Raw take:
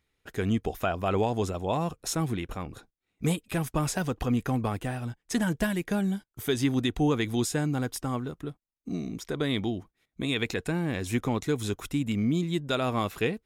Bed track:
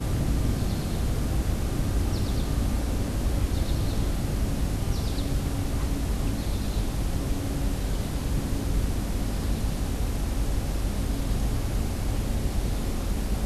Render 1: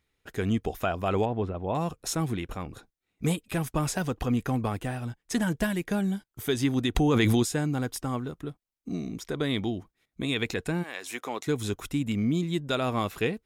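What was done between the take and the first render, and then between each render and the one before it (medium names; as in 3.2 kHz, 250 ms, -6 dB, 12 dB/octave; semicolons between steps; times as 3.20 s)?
1.25–1.75 s: distance through air 480 m; 6.95–7.43 s: level flattener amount 100%; 10.82–11.46 s: high-pass 890 Hz -> 400 Hz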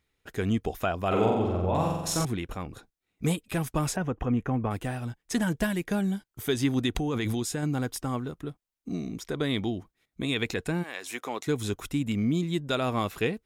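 1.07–2.25 s: flutter echo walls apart 7.7 m, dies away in 1 s; 3.96–4.71 s: boxcar filter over 10 samples; 6.93–7.63 s: compression 4:1, threshold -26 dBFS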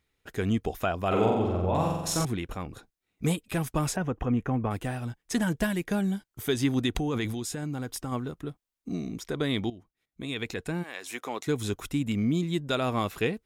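7.25–8.12 s: compression 3:1, threshold -30 dBFS; 9.70–11.88 s: fade in equal-power, from -14 dB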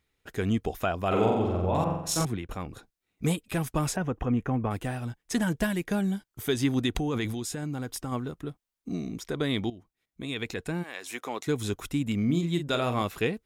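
1.84–2.49 s: three bands expanded up and down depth 100%; 12.24–13.02 s: doubling 41 ms -8.5 dB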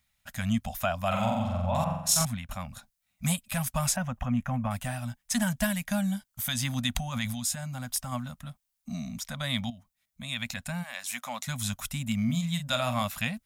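elliptic band-stop 240–580 Hz, stop band 40 dB; treble shelf 5.2 kHz +9.5 dB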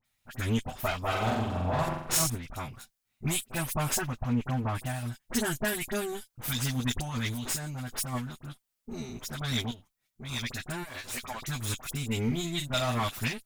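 comb filter that takes the minimum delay 7.9 ms; phase dispersion highs, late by 45 ms, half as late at 2.1 kHz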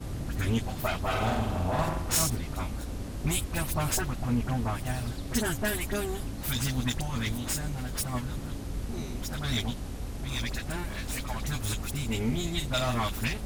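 add bed track -9 dB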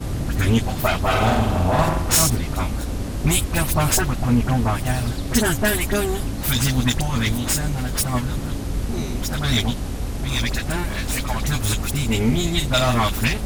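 trim +10 dB; peak limiter -3 dBFS, peak gain reduction 1.5 dB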